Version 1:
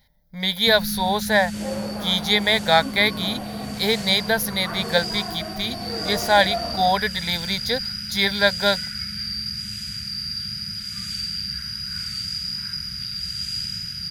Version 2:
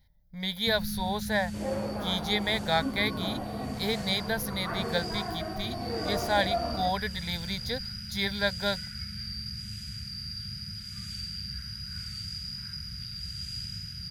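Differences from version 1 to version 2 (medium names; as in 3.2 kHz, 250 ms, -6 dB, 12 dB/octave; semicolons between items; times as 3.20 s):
second sound +7.5 dB; master: add FFT filter 110 Hz 0 dB, 180 Hz -6 dB, 560 Hz -10 dB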